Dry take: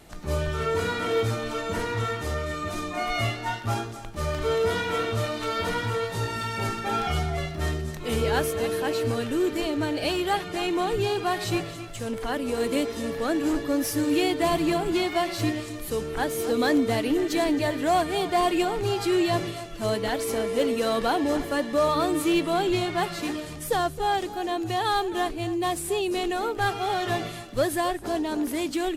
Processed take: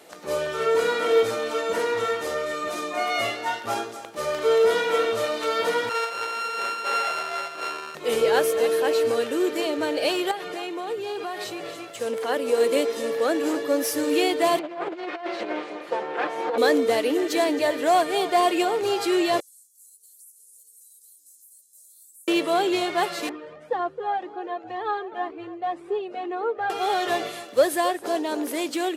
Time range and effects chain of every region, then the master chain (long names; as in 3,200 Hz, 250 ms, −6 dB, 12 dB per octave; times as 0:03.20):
0:05.89–0:07.95: samples sorted by size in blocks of 32 samples + resonant band-pass 1,600 Hz, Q 0.51 + double-tracking delay 16 ms −13 dB
0:10.31–0:12.01: parametric band 8,600 Hz −3 dB 1.8 octaves + downward compressor, threshold −30 dBFS
0:14.59–0:16.58: lower of the sound and its delayed copy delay 5.7 ms + band-pass filter 240–2,400 Hz + compressor whose output falls as the input rises −30 dBFS, ratio −0.5
0:19.40–0:22.28: inverse Chebyshev high-pass filter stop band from 2,700 Hz, stop band 60 dB + downward compressor 5 to 1, threshold −50 dBFS
0:23.29–0:26.70: low-pass filter 1,700 Hz + flanger whose copies keep moving one way rising 2 Hz
whole clip: high-pass filter 360 Hz 12 dB per octave; parametric band 500 Hz +8 dB 0.39 octaves; level +2.5 dB